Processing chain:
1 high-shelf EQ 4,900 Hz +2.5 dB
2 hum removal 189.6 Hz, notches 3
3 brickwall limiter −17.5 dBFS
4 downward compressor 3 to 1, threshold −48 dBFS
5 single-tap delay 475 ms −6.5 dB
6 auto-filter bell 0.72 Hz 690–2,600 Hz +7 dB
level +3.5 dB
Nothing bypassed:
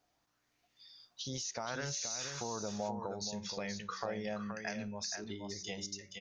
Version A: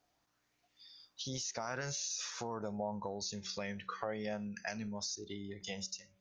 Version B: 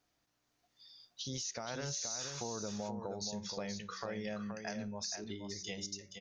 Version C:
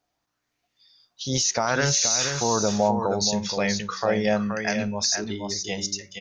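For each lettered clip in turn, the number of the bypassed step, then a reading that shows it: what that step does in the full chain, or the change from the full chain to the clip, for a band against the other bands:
5, change in momentary loudness spread +1 LU
6, 2 kHz band −3.0 dB
4, average gain reduction 13.5 dB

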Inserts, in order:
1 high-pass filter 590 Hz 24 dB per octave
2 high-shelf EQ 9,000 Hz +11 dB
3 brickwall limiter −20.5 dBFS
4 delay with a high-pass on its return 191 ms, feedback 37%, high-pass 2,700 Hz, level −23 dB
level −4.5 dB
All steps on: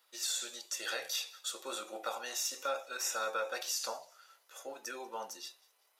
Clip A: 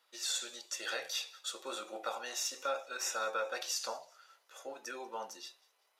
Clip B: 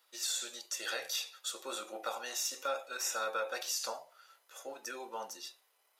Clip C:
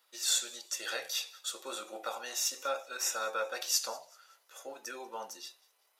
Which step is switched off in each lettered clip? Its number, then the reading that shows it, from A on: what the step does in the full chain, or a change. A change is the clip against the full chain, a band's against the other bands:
2, 8 kHz band −2.0 dB
4, echo-to-direct ratio −30.0 dB to none audible
3, change in crest factor +8.0 dB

